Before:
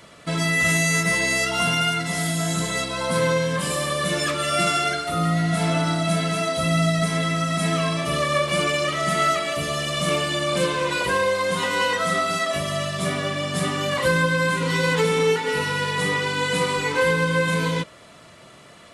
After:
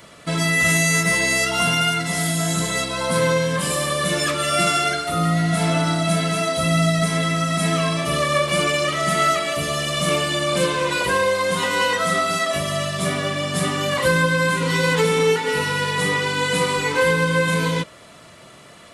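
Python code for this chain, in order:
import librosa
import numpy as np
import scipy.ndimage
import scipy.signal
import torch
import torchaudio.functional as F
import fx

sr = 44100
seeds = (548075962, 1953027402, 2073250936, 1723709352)

y = fx.high_shelf(x, sr, hz=11000.0, db=6.0)
y = y * librosa.db_to_amplitude(2.0)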